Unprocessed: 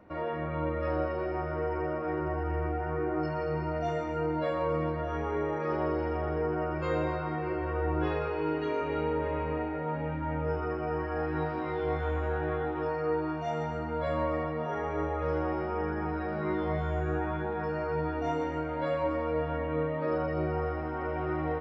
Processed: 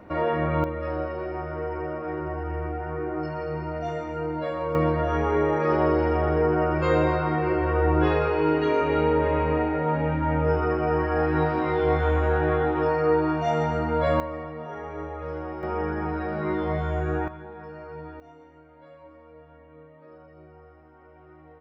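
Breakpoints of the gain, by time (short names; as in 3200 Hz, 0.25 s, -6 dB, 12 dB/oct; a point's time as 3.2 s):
+9 dB
from 0.64 s +1 dB
from 4.75 s +8.5 dB
from 14.2 s -3 dB
from 15.63 s +4 dB
from 17.28 s -8 dB
from 18.2 s -19 dB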